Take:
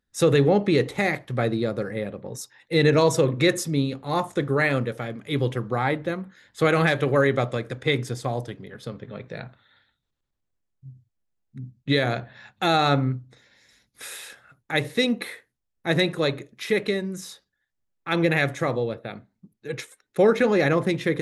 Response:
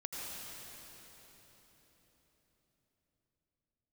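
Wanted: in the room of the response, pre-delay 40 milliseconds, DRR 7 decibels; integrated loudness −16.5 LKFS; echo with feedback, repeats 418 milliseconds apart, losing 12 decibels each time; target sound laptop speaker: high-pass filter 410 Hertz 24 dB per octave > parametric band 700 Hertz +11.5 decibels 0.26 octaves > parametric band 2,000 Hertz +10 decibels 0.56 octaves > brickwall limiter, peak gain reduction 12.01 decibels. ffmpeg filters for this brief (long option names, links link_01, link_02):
-filter_complex "[0:a]aecho=1:1:418|836|1254:0.251|0.0628|0.0157,asplit=2[link_01][link_02];[1:a]atrim=start_sample=2205,adelay=40[link_03];[link_02][link_03]afir=irnorm=-1:irlink=0,volume=-8dB[link_04];[link_01][link_04]amix=inputs=2:normalize=0,highpass=frequency=410:width=0.5412,highpass=frequency=410:width=1.3066,equalizer=frequency=700:width_type=o:width=0.26:gain=11.5,equalizer=frequency=2000:width_type=o:width=0.56:gain=10,volume=9dB,alimiter=limit=-5.5dB:level=0:latency=1"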